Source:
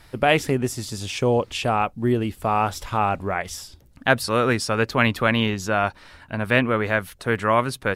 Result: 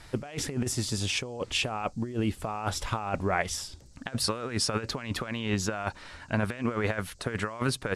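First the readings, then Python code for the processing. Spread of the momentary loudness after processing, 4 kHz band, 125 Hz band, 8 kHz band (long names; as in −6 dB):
6 LU, −3.0 dB, −6.5 dB, +0.5 dB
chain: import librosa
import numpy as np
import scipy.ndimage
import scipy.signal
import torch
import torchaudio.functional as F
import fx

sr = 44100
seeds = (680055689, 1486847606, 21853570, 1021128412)

y = scipy.signal.sosfilt(scipy.signal.butter(4, 11000.0, 'lowpass', fs=sr, output='sos'), x)
y = fx.over_compress(y, sr, threshold_db=-25.0, ratio=-0.5)
y = fx.dmg_noise_band(y, sr, seeds[0], low_hz=4200.0, high_hz=8300.0, level_db=-62.0)
y = y * librosa.db_to_amplitude(-4.0)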